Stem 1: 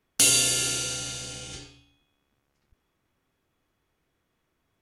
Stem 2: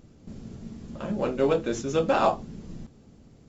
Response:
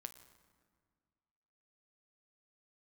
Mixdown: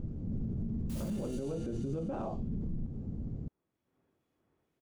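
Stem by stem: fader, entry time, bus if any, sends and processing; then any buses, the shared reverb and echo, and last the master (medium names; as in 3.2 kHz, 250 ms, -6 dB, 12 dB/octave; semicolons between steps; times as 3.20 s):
0.0 dB, 0.70 s, no send, wavefolder -21 dBFS; harmonic tremolo 2.1 Hz, depth 50%, crossover 2.3 kHz; high-pass 270 Hz 6 dB/octave; auto duck -14 dB, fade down 1.40 s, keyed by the second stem
-0.5 dB, 0.00 s, no send, bass shelf 250 Hz +9.5 dB; compression 6:1, threshold -31 dBFS, peak gain reduction 15 dB; treble shelf 3.1 kHz -9 dB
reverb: none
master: tilt shelf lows +8.5 dB, about 820 Hz; peak limiter -29 dBFS, peak gain reduction 12 dB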